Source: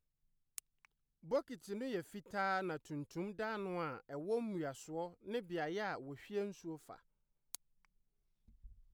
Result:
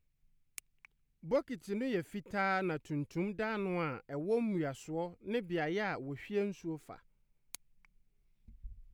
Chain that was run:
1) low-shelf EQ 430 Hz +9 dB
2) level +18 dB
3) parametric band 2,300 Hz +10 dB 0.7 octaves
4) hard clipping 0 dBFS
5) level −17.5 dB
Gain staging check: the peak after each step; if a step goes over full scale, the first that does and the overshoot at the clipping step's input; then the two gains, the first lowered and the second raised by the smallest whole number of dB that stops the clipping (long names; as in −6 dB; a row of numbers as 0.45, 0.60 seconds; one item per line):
−21.5, −3.5, −3.0, −3.0, −20.5 dBFS
no step passes full scale